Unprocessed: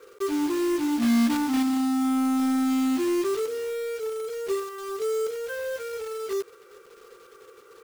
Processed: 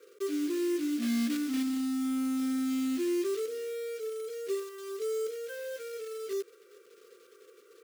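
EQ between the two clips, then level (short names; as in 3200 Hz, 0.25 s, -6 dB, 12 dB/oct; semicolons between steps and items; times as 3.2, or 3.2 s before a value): HPF 110 Hz 24 dB/oct; fixed phaser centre 360 Hz, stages 4; -5.0 dB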